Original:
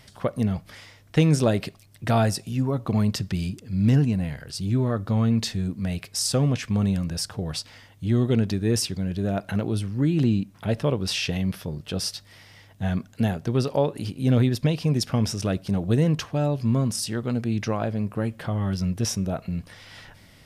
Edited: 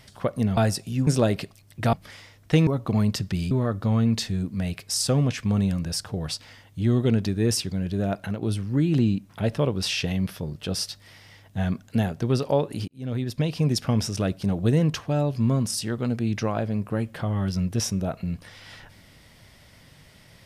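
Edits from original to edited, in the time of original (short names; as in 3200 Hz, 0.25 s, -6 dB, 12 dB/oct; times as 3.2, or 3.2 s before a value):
0.57–1.31 swap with 2.17–2.67
3.51–4.76 cut
9.4–9.67 fade out, to -8 dB
14.13–14.86 fade in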